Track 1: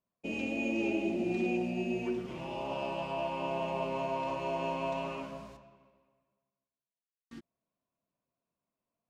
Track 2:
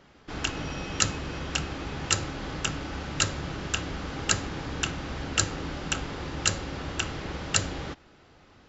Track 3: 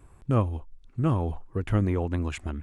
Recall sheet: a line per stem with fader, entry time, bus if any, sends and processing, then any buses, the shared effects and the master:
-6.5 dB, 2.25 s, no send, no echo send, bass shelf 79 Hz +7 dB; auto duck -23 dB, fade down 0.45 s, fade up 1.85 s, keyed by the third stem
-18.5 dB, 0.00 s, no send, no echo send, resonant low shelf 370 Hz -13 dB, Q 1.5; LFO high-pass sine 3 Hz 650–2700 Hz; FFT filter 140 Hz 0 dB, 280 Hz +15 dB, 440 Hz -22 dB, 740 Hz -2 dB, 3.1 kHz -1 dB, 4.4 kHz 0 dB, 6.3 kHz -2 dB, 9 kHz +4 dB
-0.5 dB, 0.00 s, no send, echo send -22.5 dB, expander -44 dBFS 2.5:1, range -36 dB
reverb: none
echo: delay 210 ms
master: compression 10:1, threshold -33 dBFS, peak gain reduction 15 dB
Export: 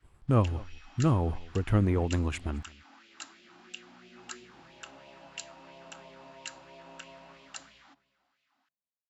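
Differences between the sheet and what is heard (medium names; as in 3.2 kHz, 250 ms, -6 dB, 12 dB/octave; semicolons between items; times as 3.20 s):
stem 1 -6.5 dB -> -18.0 dB; stem 2: missing resonant low shelf 370 Hz -13 dB, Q 1.5; master: missing compression 10:1, threshold -33 dBFS, peak gain reduction 15 dB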